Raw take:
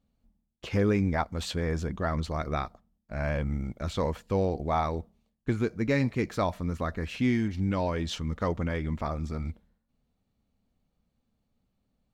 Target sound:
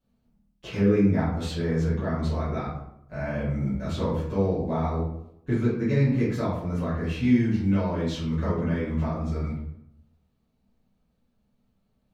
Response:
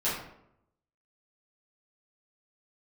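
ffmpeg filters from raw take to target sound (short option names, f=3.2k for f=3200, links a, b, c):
-filter_complex "[0:a]acrossover=split=410[a][b];[b]acompressor=threshold=-41dB:ratio=2[c];[a][c]amix=inputs=2:normalize=0[d];[1:a]atrim=start_sample=2205[e];[d][e]afir=irnorm=-1:irlink=0,volume=-4.5dB"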